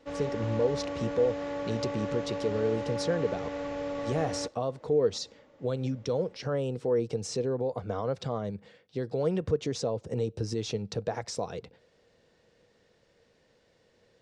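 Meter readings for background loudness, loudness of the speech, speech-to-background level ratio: -35.5 LUFS, -32.0 LUFS, 3.5 dB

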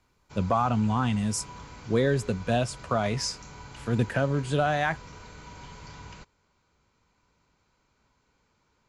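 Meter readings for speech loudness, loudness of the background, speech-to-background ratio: -27.5 LUFS, -45.5 LUFS, 18.0 dB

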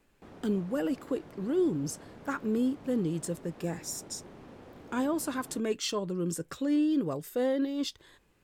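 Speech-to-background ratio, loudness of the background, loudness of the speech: 18.5 dB, -50.5 LUFS, -32.0 LUFS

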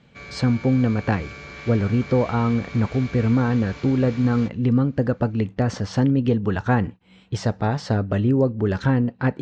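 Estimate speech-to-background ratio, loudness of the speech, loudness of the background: 16.0 dB, -22.0 LUFS, -38.0 LUFS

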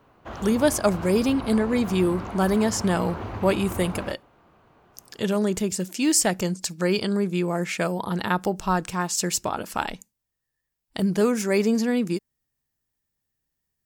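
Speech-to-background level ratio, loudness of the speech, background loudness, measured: 11.5 dB, -24.0 LUFS, -35.5 LUFS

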